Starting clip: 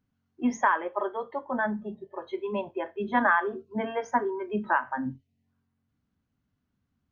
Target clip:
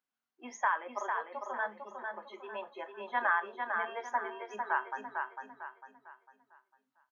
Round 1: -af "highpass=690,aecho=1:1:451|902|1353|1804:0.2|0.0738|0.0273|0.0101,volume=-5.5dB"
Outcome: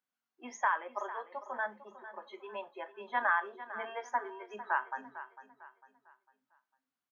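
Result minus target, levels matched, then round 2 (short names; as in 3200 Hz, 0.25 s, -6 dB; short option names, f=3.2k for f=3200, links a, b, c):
echo-to-direct -9 dB
-af "highpass=690,aecho=1:1:451|902|1353|1804|2255:0.562|0.208|0.077|0.0285|0.0105,volume=-5.5dB"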